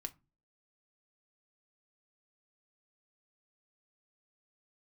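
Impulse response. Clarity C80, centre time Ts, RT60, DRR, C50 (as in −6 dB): 29.5 dB, 4 ms, 0.30 s, 7.0 dB, 22.0 dB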